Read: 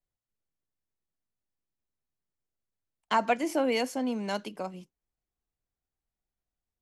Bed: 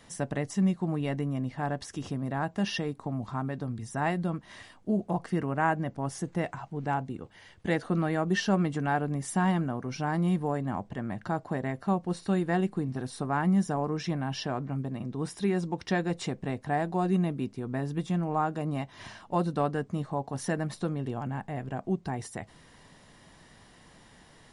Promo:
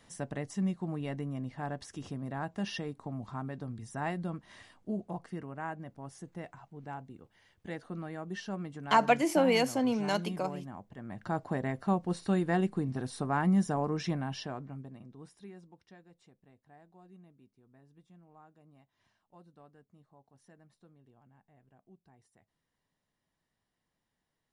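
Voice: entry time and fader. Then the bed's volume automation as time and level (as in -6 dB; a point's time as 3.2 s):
5.80 s, +1.5 dB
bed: 4.76 s -6 dB
5.53 s -12.5 dB
10.92 s -12.5 dB
11.37 s -1.5 dB
14.1 s -1.5 dB
16.06 s -29.5 dB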